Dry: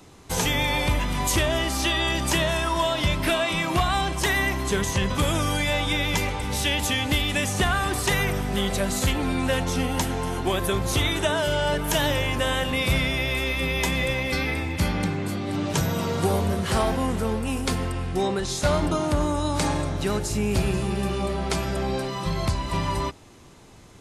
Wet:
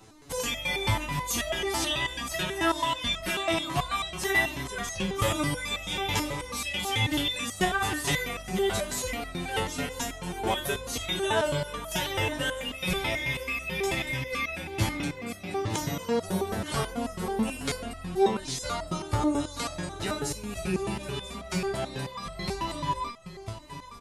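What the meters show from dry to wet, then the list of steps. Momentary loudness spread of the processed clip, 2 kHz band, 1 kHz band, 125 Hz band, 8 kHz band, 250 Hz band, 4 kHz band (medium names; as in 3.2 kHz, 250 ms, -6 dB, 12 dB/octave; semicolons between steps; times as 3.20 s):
8 LU, -4.5 dB, -4.0 dB, -8.5 dB, -4.5 dB, -6.0 dB, -4.5 dB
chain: delay 987 ms -11.5 dB; resonator arpeggio 9.2 Hz 110–650 Hz; trim +8.5 dB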